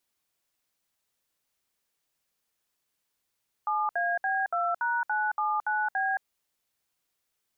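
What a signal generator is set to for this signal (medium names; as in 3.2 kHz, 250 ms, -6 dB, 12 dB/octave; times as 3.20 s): DTMF "7AB2#979B", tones 221 ms, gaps 64 ms, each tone -27.5 dBFS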